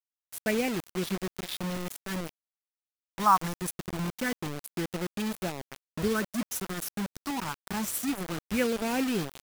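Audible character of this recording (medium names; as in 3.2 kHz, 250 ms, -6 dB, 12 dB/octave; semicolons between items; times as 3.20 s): phasing stages 4, 0.24 Hz, lowest notch 470–1200 Hz; a quantiser's noise floor 6-bit, dither none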